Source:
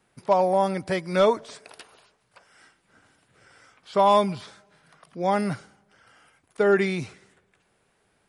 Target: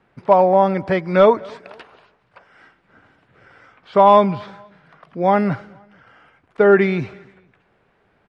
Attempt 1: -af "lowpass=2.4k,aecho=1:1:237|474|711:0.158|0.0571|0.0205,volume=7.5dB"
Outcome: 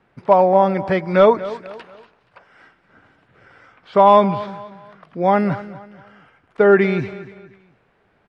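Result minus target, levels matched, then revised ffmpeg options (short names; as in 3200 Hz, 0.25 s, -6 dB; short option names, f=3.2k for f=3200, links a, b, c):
echo-to-direct +9.5 dB
-af "lowpass=2.4k,aecho=1:1:237|474:0.0531|0.0191,volume=7.5dB"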